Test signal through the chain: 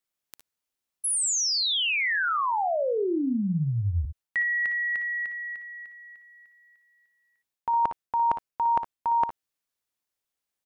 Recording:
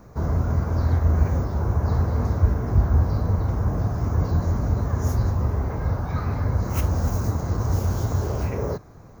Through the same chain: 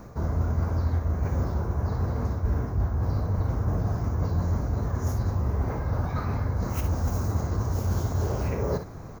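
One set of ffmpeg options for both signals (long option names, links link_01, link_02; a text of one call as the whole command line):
ffmpeg -i in.wav -af "areverse,acompressor=threshold=-30dB:ratio=4,areverse,aecho=1:1:58|69:0.316|0.168,volume=5dB" out.wav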